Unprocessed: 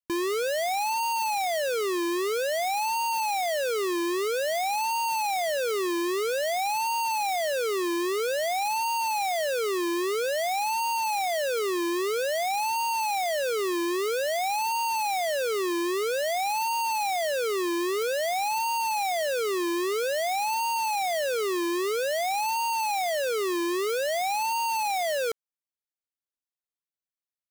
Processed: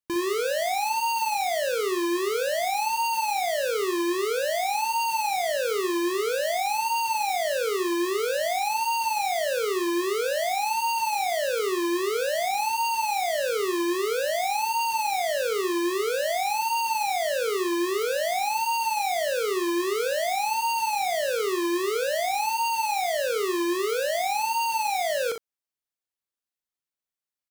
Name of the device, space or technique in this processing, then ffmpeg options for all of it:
slapback doubling: -filter_complex "[0:a]asplit=3[a][b][c];[b]adelay=40,volume=-8dB[d];[c]adelay=61,volume=-8dB[e];[a][d][e]amix=inputs=3:normalize=0"

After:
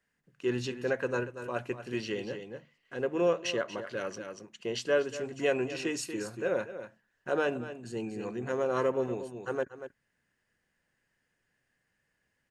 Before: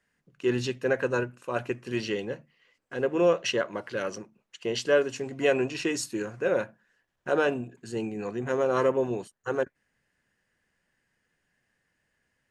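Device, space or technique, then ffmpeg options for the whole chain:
ducked delay: -filter_complex "[0:a]asplit=3[a][b][c];[b]adelay=236,volume=-3dB[d];[c]apad=whole_len=562055[e];[d][e]sidechaincompress=threshold=-32dB:ratio=8:attack=5.2:release=593[f];[a][f]amix=inputs=2:normalize=0,volume=-4.5dB"

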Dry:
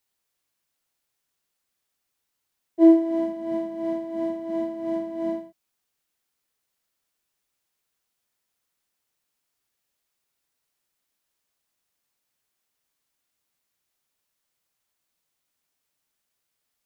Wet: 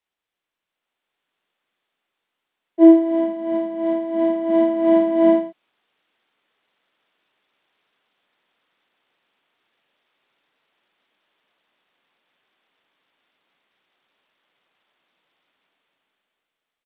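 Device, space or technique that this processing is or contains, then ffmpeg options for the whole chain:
Bluetooth headset: -af "highpass=230,dynaudnorm=f=290:g=9:m=16dB,aresample=8000,aresample=44100,volume=-1dB" -ar 32000 -c:a sbc -b:a 64k

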